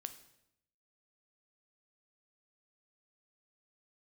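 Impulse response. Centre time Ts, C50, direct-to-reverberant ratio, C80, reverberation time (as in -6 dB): 8 ms, 12.5 dB, 9.0 dB, 15.5 dB, 0.80 s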